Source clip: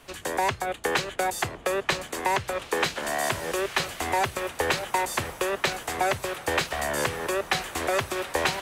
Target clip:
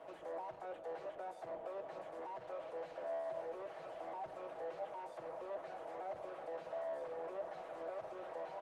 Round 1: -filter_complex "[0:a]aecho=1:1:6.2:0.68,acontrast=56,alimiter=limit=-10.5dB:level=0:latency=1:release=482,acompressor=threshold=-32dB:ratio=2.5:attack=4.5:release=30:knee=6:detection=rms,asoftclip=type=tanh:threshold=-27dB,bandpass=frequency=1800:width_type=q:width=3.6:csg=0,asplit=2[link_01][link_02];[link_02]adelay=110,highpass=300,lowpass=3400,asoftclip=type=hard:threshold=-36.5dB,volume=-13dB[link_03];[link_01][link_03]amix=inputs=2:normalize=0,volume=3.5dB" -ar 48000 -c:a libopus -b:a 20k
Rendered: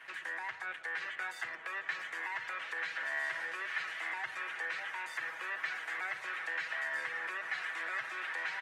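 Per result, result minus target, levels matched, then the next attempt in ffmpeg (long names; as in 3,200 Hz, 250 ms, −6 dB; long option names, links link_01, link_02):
500 Hz band −19.0 dB; soft clipping: distortion −9 dB
-filter_complex "[0:a]aecho=1:1:6.2:0.68,acontrast=56,alimiter=limit=-10.5dB:level=0:latency=1:release=482,acompressor=threshold=-32dB:ratio=2.5:attack=4.5:release=30:knee=6:detection=rms,asoftclip=type=tanh:threshold=-27dB,bandpass=frequency=620:width_type=q:width=3.6:csg=0,asplit=2[link_01][link_02];[link_02]adelay=110,highpass=300,lowpass=3400,asoftclip=type=hard:threshold=-36.5dB,volume=-13dB[link_03];[link_01][link_03]amix=inputs=2:normalize=0,volume=3.5dB" -ar 48000 -c:a libopus -b:a 20k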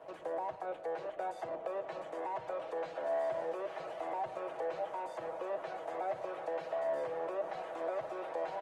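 soft clipping: distortion −9 dB
-filter_complex "[0:a]aecho=1:1:6.2:0.68,acontrast=56,alimiter=limit=-10.5dB:level=0:latency=1:release=482,acompressor=threshold=-32dB:ratio=2.5:attack=4.5:release=30:knee=6:detection=rms,asoftclip=type=tanh:threshold=-37.5dB,bandpass=frequency=620:width_type=q:width=3.6:csg=0,asplit=2[link_01][link_02];[link_02]adelay=110,highpass=300,lowpass=3400,asoftclip=type=hard:threshold=-36.5dB,volume=-13dB[link_03];[link_01][link_03]amix=inputs=2:normalize=0,volume=3.5dB" -ar 48000 -c:a libopus -b:a 20k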